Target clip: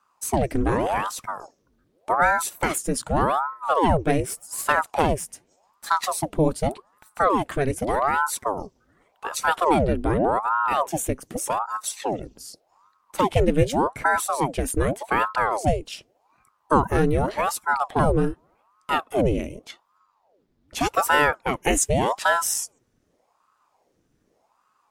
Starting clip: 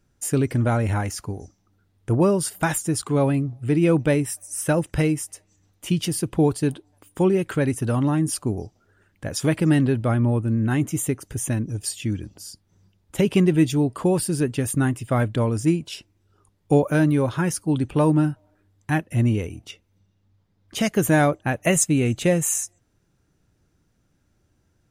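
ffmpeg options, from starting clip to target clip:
-filter_complex "[0:a]asettb=1/sr,asplit=3[a][b][c];[a]atrim=end=4.234[d];[b]atrim=start=4.23:end=6.06,asetpts=PTS-STARTPTS,afade=t=in:d=0.004:c=qsin,afade=t=out:st=1.826:d=0.004:c=qsin,aeval=exprs='0.376*(cos(1*acos(clip(val(0)/0.376,-1,1)))-cos(1*PI/2))+0.0531*(cos(4*acos(clip(val(0)/0.376,-1,1)))-cos(4*PI/2))':c=same[e];[c]atrim=start=6.056[f];[d][e]acrossfade=d=0.004:c1=hsin:c2=qsin[g];[g][f]acrossfade=d=0.004:c1=qsin:c2=hsin,aeval=exprs='val(0)*sin(2*PI*660*n/s+660*0.8/0.85*sin(2*PI*0.85*n/s))':c=same,volume=1.5dB"

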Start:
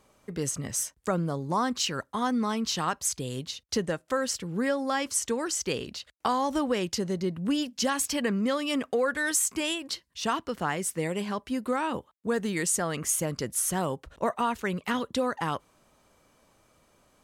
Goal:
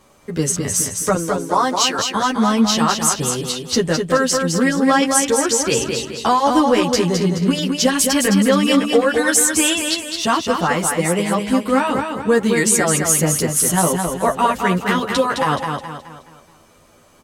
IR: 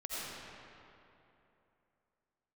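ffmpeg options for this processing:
-filter_complex "[0:a]asettb=1/sr,asplit=3[a][b][c];[a]atrim=end=1.154[d];[b]atrim=start=1.15:end=1.99,asetpts=PTS-STARTPTS,afade=t=in:d=0.004:c=qsin,afade=t=out:st=0.836:d=0.004:c=qsin,highpass=360[e];[c]atrim=start=1.986[f];[d][e]acrossfade=d=0.004:c1=hsin:c2=qsin[g];[g][f]acrossfade=d=0.004:c1=qsin:c2=hsin,apsyclip=18dB,asplit=2[h][i];[i]aecho=0:1:212|424|636|848|1060:0.562|0.231|0.0945|0.0388|0.0159[j];[h][j]amix=inputs=2:normalize=0,asplit=2[k][l];[l]adelay=10.3,afreqshift=0.31[m];[k][m]amix=inputs=2:normalize=1,volume=-4dB"

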